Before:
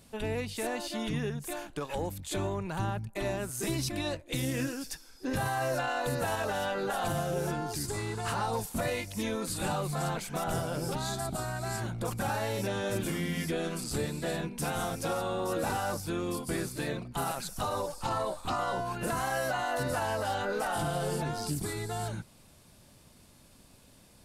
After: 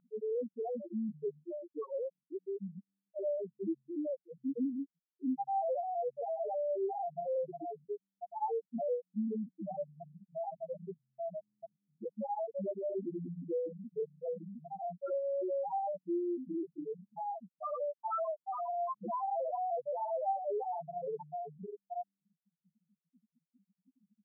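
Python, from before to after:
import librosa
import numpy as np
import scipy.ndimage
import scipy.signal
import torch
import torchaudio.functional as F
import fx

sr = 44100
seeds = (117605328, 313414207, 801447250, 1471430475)

y = fx.spec_topn(x, sr, count=1)
y = fx.brickwall_bandpass(y, sr, low_hz=180.0, high_hz=1400.0)
y = y * librosa.db_to_amplitude(6.5)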